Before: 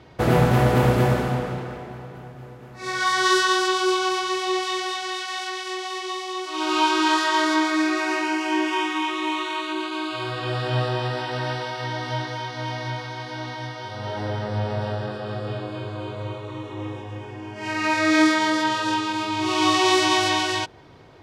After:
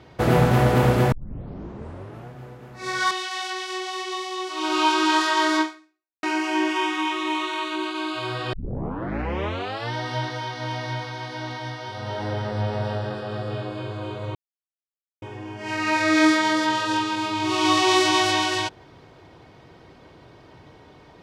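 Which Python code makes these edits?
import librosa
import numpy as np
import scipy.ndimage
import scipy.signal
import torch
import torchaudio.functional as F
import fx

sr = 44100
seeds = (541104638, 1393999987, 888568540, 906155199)

y = fx.edit(x, sr, fx.tape_start(start_s=1.12, length_s=1.17),
    fx.cut(start_s=3.11, length_s=1.97),
    fx.fade_out_span(start_s=7.58, length_s=0.62, curve='exp'),
    fx.tape_start(start_s=10.5, length_s=1.41),
    fx.silence(start_s=16.32, length_s=0.87), tone=tone)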